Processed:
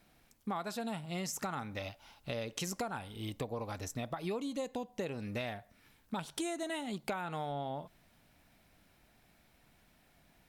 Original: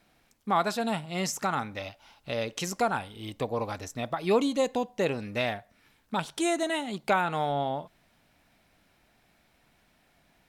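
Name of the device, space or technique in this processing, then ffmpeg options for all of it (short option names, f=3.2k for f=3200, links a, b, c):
ASMR close-microphone chain: -af "lowshelf=f=230:g=5,acompressor=threshold=-32dB:ratio=6,highshelf=f=10k:g=7.5,volume=-3dB"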